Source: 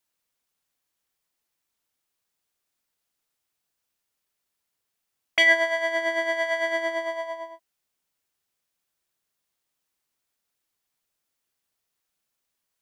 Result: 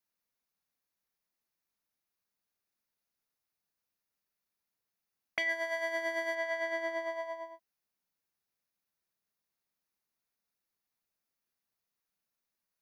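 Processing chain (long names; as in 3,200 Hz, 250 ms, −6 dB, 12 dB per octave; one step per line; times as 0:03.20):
0:05.49–0:06.35: high-shelf EQ 6,200 Hz +10 dB
downward compressor 6 to 1, threshold −23 dBFS, peak gain reduction 9.5 dB
thirty-one-band graphic EQ 200 Hz +6 dB, 3,150 Hz −6 dB, 8,000 Hz −10 dB
level −6.5 dB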